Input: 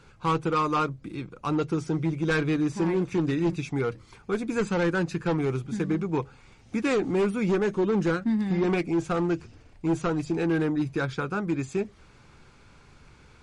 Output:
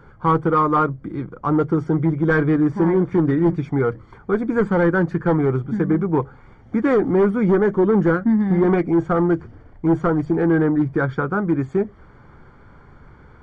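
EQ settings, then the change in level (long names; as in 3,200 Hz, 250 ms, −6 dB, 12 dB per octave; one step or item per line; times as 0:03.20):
Savitzky-Golay smoothing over 41 samples
+8.0 dB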